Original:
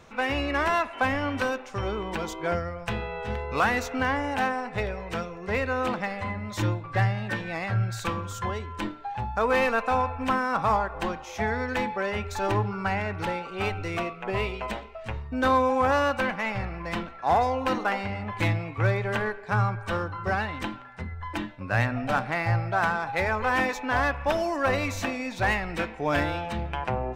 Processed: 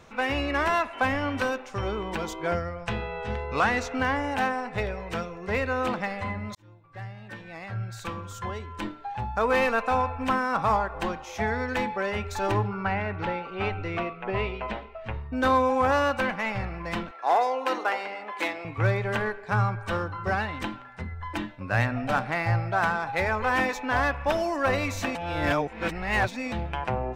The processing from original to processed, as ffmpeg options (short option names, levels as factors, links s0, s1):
-filter_complex "[0:a]asettb=1/sr,asplit=3[s0][s1][s2];[s0]atrim=end=2.694[s3];[s1]atrim=start=2.69:end=3.94,asetpts=PTS-STARTPTS,afade=t=in:d=0.004:c=qsin,afade=t=out:st=1.246:d=0.004:c=qsin,lowpass=8400[s4];[s2]atrim=start=3.936[s5];[s3][s4]acrossfade=d=0.004:c1=hsin:c2=qsin[s6];[s6][s5]acrossfade=d=0.004:c1=qsin:c2=hsin,asettb=1/sr,asplit=3[s7][s8][s9];[s7]atrim=end=12.674[s10];[s8]atrim=start=12.67:end=15.33,asetpts=PTS-STARTPTS,afade=t=in:d=0.004:c=qsin,afade=t=out:st=2.656:d=0.004:c=qsin,lowpass=3300[s11];[s9]atrim=start=15.326[s12];[s10][s11]acrossfade=d=0.004:c1=hsin:c2=qsin[s13];[s13][s12]acrossfade=d=0.004:c1=qsin:c2=hsin,asettb=1/sr,asplit=3[s14][s15][s16];[s14]atrim=end=17.114[s17];[s15]atrim=start=17.11:end=18.65,asetpts=PTS-STARTPTS,afade=t=in:d=0.004:c=qsin,afade=t=out:st=1.536:d=0.004:c=qsin,highpass=f=330:w=0.5412,highpass=f=330:w=1.3066[s18];[s16]atrim=start=18.646[s19];[s17][s18]acrossfade=d=0.004:c1=hsin:c2=qsin[s20];[s20][s19]acrossfade=d=0.004:c1=qsin:c2=hsin,asplit=4[s21][s22][s23][s24];[s21]atrim=end=6.55,asetpts=PTS-STARTPTS,afade=t=out:st=6.546:d=0.004:c=hsin[s25];[s22]atrim=start=6.55:end=25.152,asetpts=PTS-STARTPTS,afade=t=in:d=2.8[s26];[s23]atrim=start=25.148:end=26.522,asetpts=PTS-STARTPTS,areverse[s27];[s24]atrim=start=26.518[s28];[s25][s26]concat=n=2:v=0:a=1[s29];[s29][s27]acrossfade=d=0.004:c1=hsin:c2=hsin[s30];[s30][s28]acrossfade=d=0.004:c1=hsin:c2=hsin"